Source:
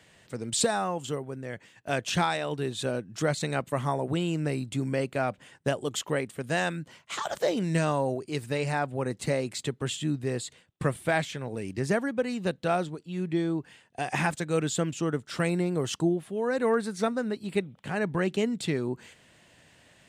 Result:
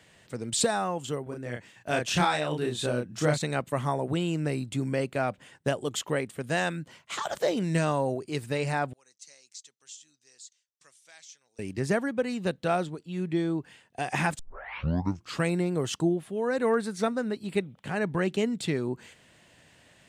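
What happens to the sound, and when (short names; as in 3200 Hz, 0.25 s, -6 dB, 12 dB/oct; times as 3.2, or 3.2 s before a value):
1.23–3.38 doubler 33 ms -3 dB
8.93–11.59 band-pass 6000 Hz, Q 5.1
14.39 tape start 1.05 s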